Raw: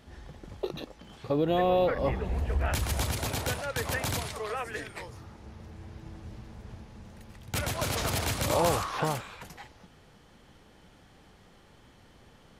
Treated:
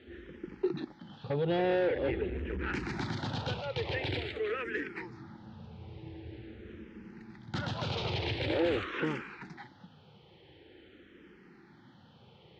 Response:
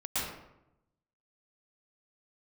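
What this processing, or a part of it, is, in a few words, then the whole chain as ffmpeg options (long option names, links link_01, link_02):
barber-pole phaser into a guitar amplifier: -filter_complex "[0:a]asplit=2[link_01][link_02];[link_02]afreqshift=-0.46[link_03];[link_01][link_03]amix=inputs=2:normalize=1,asoftclip=type=tanh:threshold=-27.5dB,highpass=110,equalizer=frequency=350:width_type=q:width=4:gain=8,equalizer=frequency=650:width_type=q:width=4:gain=-10,equalizer=frequency=1100:width_type=q:width=4:gain=-9,lowpass=frequency=3800:width=0.5412,lowpass=frequency=3800:width=1.3066,volume=4dB"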